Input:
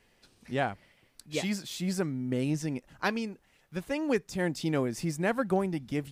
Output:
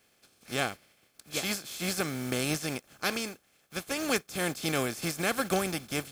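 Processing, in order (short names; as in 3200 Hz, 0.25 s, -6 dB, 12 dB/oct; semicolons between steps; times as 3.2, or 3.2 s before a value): spectral contrast lowered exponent 0.48; notch comb 960 Hz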